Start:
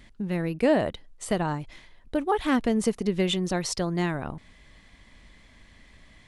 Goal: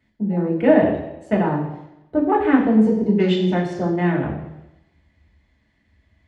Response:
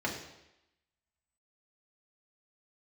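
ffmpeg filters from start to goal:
-filter_complex "[0:a]afwtdn=0.0178[link_01];[1:a]atrim=start_sample=2205,asetrate=43218,aresample=44100[link_02];[link_01][link_02]afir=irnorm=-1:irlink=0,volume=-1.5dB"

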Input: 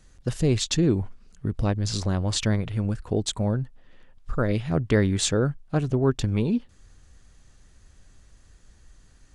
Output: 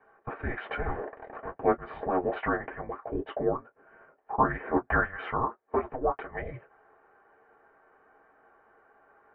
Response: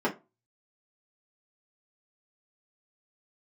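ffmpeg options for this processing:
-filter_complex "[0:a]asettb=1/sr,asplit=3[link_01][link_02][link_03];[link_01]atrim=end=0.644[link_04];[link_02]atrim=start=0.64:end=1.5,asetpts=PTS-STARTPTS,afade=type=in:duration=0.004:curve=qsin,afade=type=out:start_time=0.856:duration=0.004:curve=qsin,aeval=exprs='val(0)+0.5*0.0251*sgn(val(0))':channel_layout=same[link_05];[link_03]atrim=start=1.496[link_06];[link_04][link_05]acrossfade=duration=0.004:curve1=hsin:curve2=qsin[link_07];[link_07][link_06]acrossfade=duration=0.004:curve1=qsin:curve2=hsin,asettb=1/sr,asplit=3[link_08][link_09][link_10];[link_08]atrim=end=5.044[link_11];[link_09]atrim=start=5.04:end=6.31,asetpts=PTS-STARTPTS,afade=type=in:duration=0.004:curve=qsin,afade=type=out:start_time=1.266:duration=0.004:curve=qsin,lowshelf=frequency=450:gain=-8[link_12];[link_10]atrim=start=6.306[link_13];[link_11][link_12]acrossfade=duration=0.004:curve1=hsin:curve2=qsin[link_14];[link_14][link_13]acrossfade=duration=0.004:curve1=qsin:curve2=hsin,highpass=frequency=330:width_type=q:width=0.5412,highpass=frequency=330:width_type=q:width=1.307,lowpass=frequency=2200:width_type=q:width=0.5176,lowpass=frequency=2200:width_type=q:width=0.7071,lowpass=frequency=2200:width_type=q:width=1.932,afreqshift=-370[link_15];[1:a]atrim=start_sample=2205,atrim=end_sample=3969,asetrate=83790,aresample=44100[link_16];[link_15][link_16]afir=irnorm=-1:irlink=0"

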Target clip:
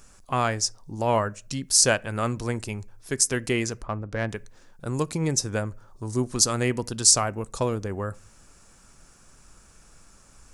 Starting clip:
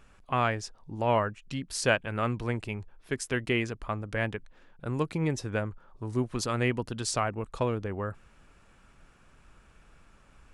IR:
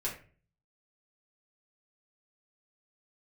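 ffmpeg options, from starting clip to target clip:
-filter_complex "[0:a]highshelf=frequency=4200:width_type=q:width=1.5:gain=12,asplit=3[link_01][link_02][link_03];[link_01]afade=type=out:start_time=3.81:duration=0.02[link_04];[link_02]adynamicsmooth=sensitivity=1:basefreq=2000,afade=type=in:start_time=3.81:duration=0.02,afade=type=out:start_time=4.28:duration=0.02[link_05];[link_03]afade=type=in:start_time=4.28:duration=0.02[link_06];[link_04][link_05][link_06]amix=inputs=3:normalize=0,asplit=2[link_07][link_08];[1:a]atrim=start_sample=2205[link_09];[link_08][link_09]afir=irnorm=-1:irlink=0,volume=-21.5dB[link_10];[link_07][link_10]amix=inputs=2:normalize=0,volume=2.5dB"

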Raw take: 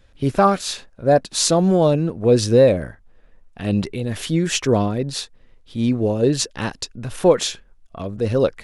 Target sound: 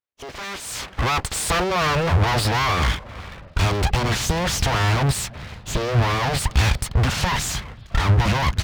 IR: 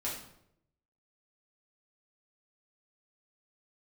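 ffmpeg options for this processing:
-filter_complex "[0:a]acompressor=threshold=-21dB:ratio=2,aresample=11025,volume=21.5dB,asoftclip=hard,volume=-21.5dB,aresample=44100,asplit=2[link_01][link_02];[link_02]highpass=frequency=720:poles=1,volume=29dB,asoftclip=type=tanh:threshold=-17.5dB[link_03];[link_01][link_03]amix=inputs=2:normalize=0,lowpass=frequency=1700:poles=1,volume=-6dB,asplit=2[link_04][link_05];[link_05]adelay=363,lowpass=frequency=1000:poles=1,volume=-24dB,asplit=2[link_06][link_07];[link_07]adelay=363,lowpass=frequency=1000:poles=1,volume=0.4,asplit=2[link_08][link_09];[link_09]adelay=363,lowpass=frequency=1000:poles=1,volume=0.4[link_10];[link_04][link_06][link_08][link_10]amix=inputs=4:normalize=0,aeval=exprs='abs(val(0))':channel_layout=same,asubboost=boost=8.5:cutoff=120,agate=range=-45dB:threshold=-36dB:ratio=16:detection=peak,highpass=55,dynaudnorm=framelen=520:gausssize=3:maxgain=15.5dB,volume=-4.5dB"

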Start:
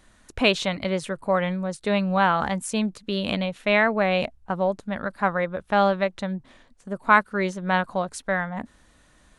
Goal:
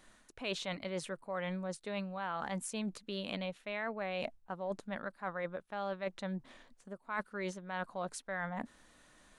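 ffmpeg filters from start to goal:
ffmpeg -i in.wav -af "equalizer=frequency=60:width_type=o:width=2.2:gain=-11.5,areverse,acompressor=threshold=-32dB:ratio=8,areverse,volume=-3.5dB" out.wav

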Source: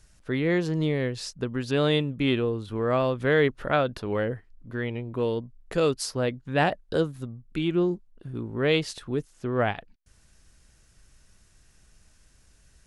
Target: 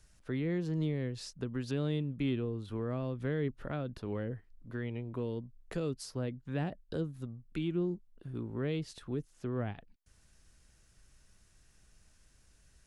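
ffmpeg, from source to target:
ffmpeg -i in.wav -filter_complex "[0:a]acrossover=split=320[link_01][link_02];[link_02]acompressor=threshold=-37dB:ratio=4[link_03];[link_01][link_03]amix=inputs=2:normalize=0,volume=-5.5dB" out.wav

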